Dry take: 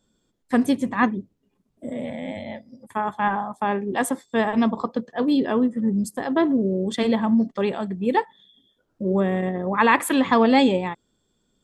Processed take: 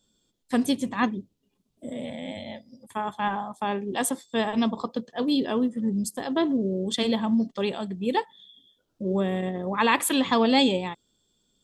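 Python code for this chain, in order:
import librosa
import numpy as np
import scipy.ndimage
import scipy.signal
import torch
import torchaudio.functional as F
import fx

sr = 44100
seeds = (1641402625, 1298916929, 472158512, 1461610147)

y = fx.high_shelf_res(x, sr, hz=2500.0, db=6.5, q=1.5)
y = F.gain(torch.from_numpy(y), -4.0).numpy()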